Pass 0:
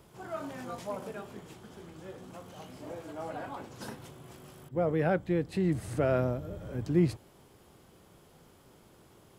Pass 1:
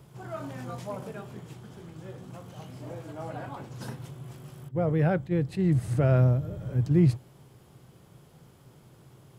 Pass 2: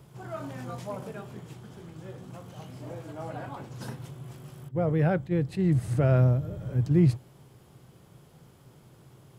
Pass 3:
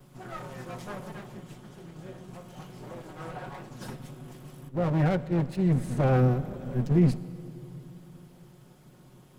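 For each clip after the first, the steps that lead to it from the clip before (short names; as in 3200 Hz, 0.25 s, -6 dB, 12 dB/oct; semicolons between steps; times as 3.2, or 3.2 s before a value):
bell 130 Hz +13.5 dB 0.63 oct; attack slew limiter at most 400 dB/s
nothing audible
minimum comb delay 5.5 ms; on a send at -16 dB: reverb RT60 3.4 s, pre-delay 36 ms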